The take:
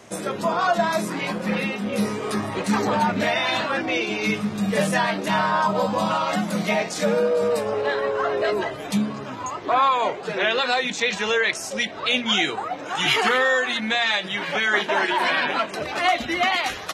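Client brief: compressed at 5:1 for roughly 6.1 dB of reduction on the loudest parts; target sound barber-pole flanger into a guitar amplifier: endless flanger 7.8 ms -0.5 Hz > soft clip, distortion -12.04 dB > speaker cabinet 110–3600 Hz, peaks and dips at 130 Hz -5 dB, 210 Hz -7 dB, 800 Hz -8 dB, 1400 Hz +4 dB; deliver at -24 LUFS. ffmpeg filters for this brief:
-filter_complex "[0:a]acompressor=threshold=-22dB:ratio=5,asplit=2[a][b];[b]adelay=7.8,afreqshift=-0.5[c];[a][c]amix=inputs=2:normalize=1,asoftclip=threshold=-27.5dB,highpass=110,equalizer=f=130:t=q:w=4:g=-5,equalizer=f=210:t=q:w=4:g=-7,equalizer=f=800:t=q:w=4:g=-8,equalizer=f=1.4k:t=q:w=4:g=4,lowpass=f=3.6k:w=0.5412,lowpass=f=3.6k:w=1.3066,volume=9.5dB"

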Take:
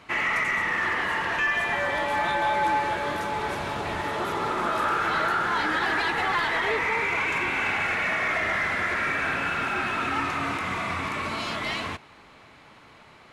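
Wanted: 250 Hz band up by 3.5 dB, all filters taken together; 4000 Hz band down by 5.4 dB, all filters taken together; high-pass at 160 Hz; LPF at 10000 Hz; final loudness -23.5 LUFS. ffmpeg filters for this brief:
-af "highpass=160,lowpass=10k,equalizer=f=250:t=o:g=5.5,equalizer=f=4k:t=o:g=-7.5,volume=2.5dB"

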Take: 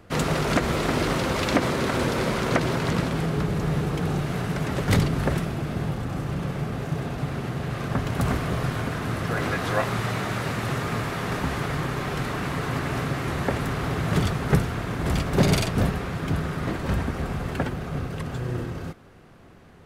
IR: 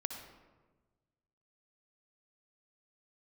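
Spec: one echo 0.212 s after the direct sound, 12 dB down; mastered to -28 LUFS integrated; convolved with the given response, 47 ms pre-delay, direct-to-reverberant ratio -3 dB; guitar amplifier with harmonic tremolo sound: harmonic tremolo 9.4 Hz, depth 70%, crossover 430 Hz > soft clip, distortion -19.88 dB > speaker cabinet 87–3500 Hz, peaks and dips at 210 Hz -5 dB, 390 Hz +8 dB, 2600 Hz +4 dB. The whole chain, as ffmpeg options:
-filter_complex "[0:a]aecho=1:1:212:0.251,asplit=2[a][b];[1:a]atrim=start_sample=2205,adelay=47[c];[b][c]afir=irnorm=-1:irlink=0,volume=2.5dB[d];[a][d]amix=inputs=2:normalize=0,acrossover=split=430[e][f];[e]aeval=exprs='val(0)*(1-0.7/2+0.7/2*cos(2*PI*9.4*n/s))':c=same[g];[f]aeval=exprs='val(0)*(1-0.7/2-0.7/2*cos(2*PI*9.4*n/s))':c=same[h];[g][h]amix=inputs=2:normalize=0,asoftclip=threshold=-12.5dB,highpass=87,equalizer=f=210:t=q:w=4:g=-5,equalizer=f=390:t=q:w=4:g=8,equalizer=f=2.6k:t=q:w=4:g=4,lowpass=f=3.5k:w=0.5412,lowpass=f=3.5k:w=1.3066,volume=-3dB"

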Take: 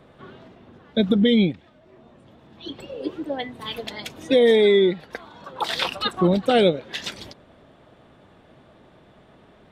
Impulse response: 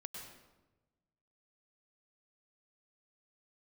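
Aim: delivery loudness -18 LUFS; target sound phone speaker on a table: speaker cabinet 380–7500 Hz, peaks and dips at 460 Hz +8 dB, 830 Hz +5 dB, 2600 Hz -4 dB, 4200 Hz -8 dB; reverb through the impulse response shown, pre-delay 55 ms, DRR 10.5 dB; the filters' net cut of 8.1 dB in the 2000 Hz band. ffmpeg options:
-filter_complex "[0:a]equalizer=f=2k:t=o:g=-8.5,asplit=2[a][b];[1:a]atrim=start_sample=2205,adelay=55[c];[b][c]afir=irnorm=-1:irlink=0,volume=-7.5dB[d];[a][d]amix=inputs=2:normalize=0,highpass=f=380:w=0.5412,highpass=f=380:w=1.3066,equalizer=f=460:t=q:w=4:g=8,equalizer=f=830:t=q:w=4:g=5,equalizer=f=2.6k:t=q:w=4:g=-4,equalizer=f=4.2k:t=q:w=4:g=-8,lowpass=f=7.5k:w=0.5412,lowpass=f=7.5k:w=1.3066,volume=1dB"

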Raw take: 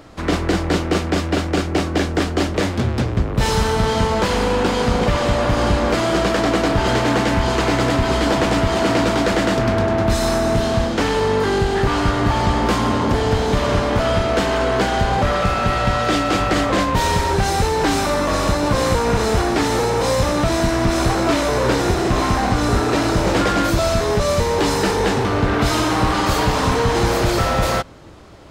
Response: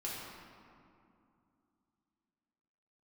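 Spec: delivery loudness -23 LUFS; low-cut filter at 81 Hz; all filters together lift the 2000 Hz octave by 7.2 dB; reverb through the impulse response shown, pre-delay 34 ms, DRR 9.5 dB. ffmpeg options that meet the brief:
-filter_complex "[0:a]highpass=81,equalizer=f=2k:t=o:g=9,asplit=2[a][b];[1:a]atrim=start_sample=2205,adelay=34[c];[b][c]afir=irnorm=-1:irlink=0,volume=-11.5dB[d];[a][d]amix=inputs=2:normalize=0,volume=-7dB"

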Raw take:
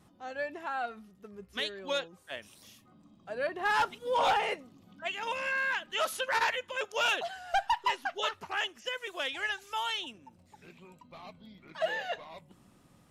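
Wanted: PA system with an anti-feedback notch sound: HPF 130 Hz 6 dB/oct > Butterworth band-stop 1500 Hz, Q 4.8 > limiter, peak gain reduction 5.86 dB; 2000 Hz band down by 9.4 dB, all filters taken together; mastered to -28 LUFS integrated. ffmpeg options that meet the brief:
-af "highpass=f=130:p=1,asuperstop=centerf=1500:order=8:qfactor=4.8,equalizer=f=2k:t=o:g=-8.5,volume=9.5dB,alimiter=limit=-15.5dB:level=0:latency=1"

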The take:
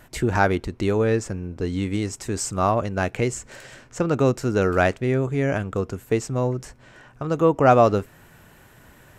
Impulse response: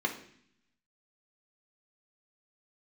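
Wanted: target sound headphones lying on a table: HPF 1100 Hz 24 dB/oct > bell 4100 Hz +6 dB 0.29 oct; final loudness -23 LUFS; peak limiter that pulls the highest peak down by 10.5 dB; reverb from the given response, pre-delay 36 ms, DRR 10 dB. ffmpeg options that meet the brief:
-filter_complex "[0:a]alimiter=limit=-14dB:level=0:latency=1,asplit=2[a][b];[1:a]atrim=start_sample=2205,adelay=36[c];[b][c]afir=irnorm=-1:irlink=0,volume=-17dB[d];[a][d]amix=inputs=2:normalize=0,highpass=f=1.1k:w=0.5412,highpass=f=1.1k:w=1.3066,equalizer=f=4.1k:t=o:w=0.29:g=6,volume=11.5dB"

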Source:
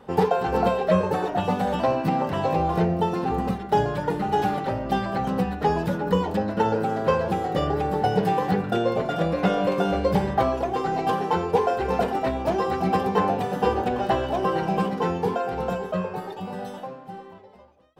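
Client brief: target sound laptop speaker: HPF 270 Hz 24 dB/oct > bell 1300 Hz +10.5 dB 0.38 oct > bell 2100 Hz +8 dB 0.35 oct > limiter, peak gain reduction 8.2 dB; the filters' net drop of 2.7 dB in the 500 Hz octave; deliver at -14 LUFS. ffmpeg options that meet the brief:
-af "highpass=f=270:w=0.5412,highpass=f=270:w=1.3066,equalizer=f=500:t=o:g=-3.5,equalizer=f=1.3k:t=o:w=0.38:g=10.5,equalizer=f=2.1k:t=o:w=0.35:g=8,volume=13dB,alimiter=limit=-3.5dB:level=0:latency=1"

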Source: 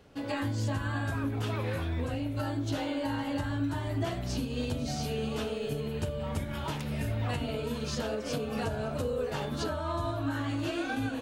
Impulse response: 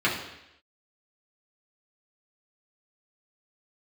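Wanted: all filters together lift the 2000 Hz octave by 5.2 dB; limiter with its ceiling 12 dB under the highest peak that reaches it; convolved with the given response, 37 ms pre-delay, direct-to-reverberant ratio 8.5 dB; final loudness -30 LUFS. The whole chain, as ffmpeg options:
-filter_complex "[0:a]equalizer=f=2k:t=o:g=7,alimiter=level_in=6dB:limit=-24dB:level=0:latency=1,volume=-6dB,asplit=2[a][b];[1:a]atrim=start_sample=2205,adelay=37[c];[b][c]afir=irnorm=-1:irlink=0,volume=-23.5dB[d];[a][d]amix=inputs=2:normalize=0,volume=7.5dB"

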